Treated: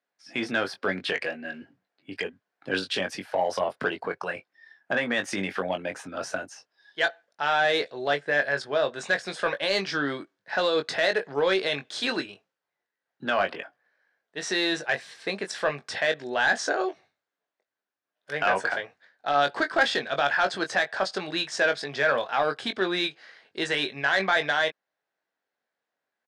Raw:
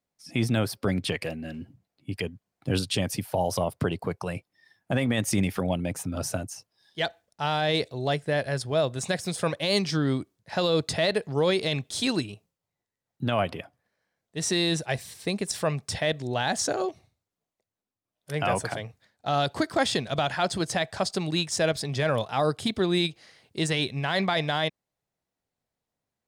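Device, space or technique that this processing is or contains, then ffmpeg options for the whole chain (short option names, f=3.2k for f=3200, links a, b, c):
intercom: -filter_complex "[0:a]highpass=380,lowpass=4.3k,equalizer=f=1.6k:t=o:w=0.44:g=10,asoftclip=type=tanh:threshold=-15dB,asplit=2[a][b];[b]adelay=21,volume=-7dB[c];[a][c]amix=inputs=2:normalize=0,volume=1.5dB"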